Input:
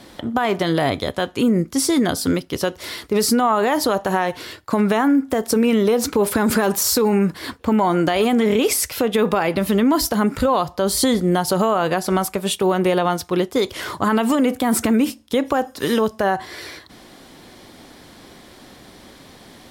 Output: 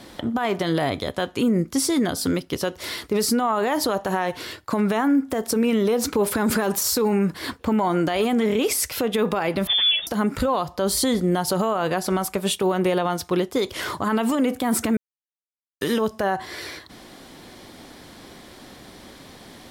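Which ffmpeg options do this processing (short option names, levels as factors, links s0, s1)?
-filter_complex "[0:a]asettb=1/sr,asplit=3[s0][s1][s2];[s0]atrim=end=9.674[s3];[s1]atrim=start=9.67:end=10.07,asetpts=PTS-STARTPTS,afade=t=in:d=0.004:c=qsin,afade=t=out:st=0.396:d=0.004:c=qsin,lowpass=f=3100:t=q:w=0.5098,lowpass=f=3100:t=q:w=0.6013,lowpass=f=3100:t=q:w=0.9,lowpass=f=3100:t=q:w=2.563,afreqshift=-3700[s4];[s2]atrim=start=10.066[s5];[s3][s4]acrossfade=d=0.004:c1=hsin:c2=qsin[s6];[s6][s5]acrossfade=d=0.004:c1=qsin:c2=hsin,asplit=3[s7][s8][s9];[s7]atrim=end=14.97,asetpts=PTS-STARTPTS,afade=t=out:st=14.966:d=0.004:c=hsin[s10];[s8]atrim=start=14.97:end=15.81,asetpts=PTS-STARTPTS,volume=0[s11];[s9]atrim=start=15.81,asetpts=PTS-STARTPTS,afade=t=in:d=0.004:c=hsin[s12];[s10][s11][s12]concat=n=3:v=0:a=1,alimiter=limit=0.224:level=0:latency=1:release=190"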